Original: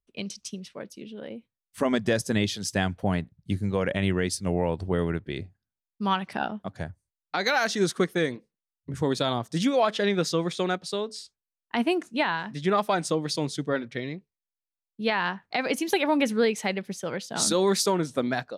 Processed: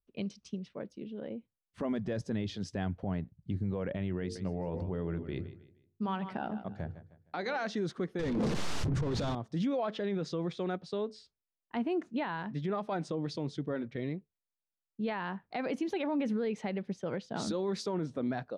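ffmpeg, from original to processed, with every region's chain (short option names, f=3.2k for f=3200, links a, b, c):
-filter_complex "[0:a]asettb=1/sr,asplit=3[a][b][c];[a]atrim=end=4.204[d];[b]atrim=start=4.2:end=7.67,asetpts=PTS-STARTPTS,afade=t=in:d=0.004:c=qsin,afade=t=out:st=3.466:d=0.004:c=qsin,bandreject=f=50:t=h:w=6,bandreject=f=100:t=h:w=6,bandreject=f=150:t=h:w=6,bandreject=f=200:t=h:w=6,bandreject=f=250:t=h:w=6,bandreject=f=300:t=h:w=6,bandreject=f=350:t=h:w=6,bandreject=f=400:t=h:w=6,bandreject=f=450:t=h:w=6,bandreject=f=500:t=h:w=6,aecho=1:1:154|308|462:0.158|0.0555|0.0194,atrim=end_sample=153027[e];[c]atrim=start=7.666[f];[d][e]acrossfade=d=0.004:c1=hsin:c2=qsin[g];[g][f]acrossfade=d=0.004:c1=qsin:c2=hsin,asettb=1/sr,asplit=3[h][i][j];[h]atrim=end=8.194[k];[i]atrim=start=8.19:end=9.35,asetpts=PTS-STARTPTS,afade=t=in:d=0.004:c=qsin,afade=t=out:st=1.156:d=0.004:c=qsin,aeval=exprs='val(0)+0.5*0.0106*sgn(val(0))':c=same,asplit=2[l][m];[m]highpass=f=720:p=1,volume=37dB,asoftclip=type=tanh:threshold=-12.5dB[n];[l][n]amix=inputs=2:normalize=0,lowpass=f=1.9k:p=1,volume=-6dB,bass=f=250:g=13,treble=f=4k:g=14[o];[j]atrim=start=9.346[p];[k][o]acrossfade=d=0.004:c1=hsin:c2=qsin[q];[q][p]acrossfade=d=0.004:c1=qsin:c2=hsin,lowpass=4.6k,tiltshelf=f=1.1k:g=5.5,alimiter=limit=-19.5dB:level=0:latency=1:release=44,volume=-6dB"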